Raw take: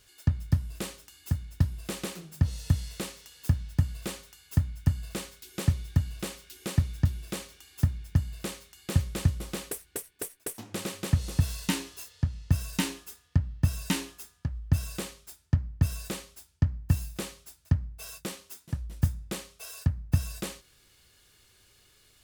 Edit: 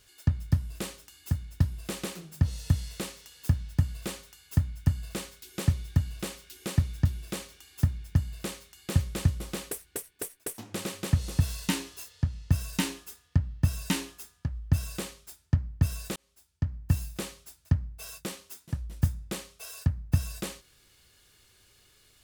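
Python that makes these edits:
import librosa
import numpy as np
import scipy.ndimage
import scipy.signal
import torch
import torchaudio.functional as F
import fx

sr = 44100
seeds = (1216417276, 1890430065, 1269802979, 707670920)

y = fx.edit(x, sr, fx.fade_in_span(start_s=16.16, length_s=0.8), tone=tone)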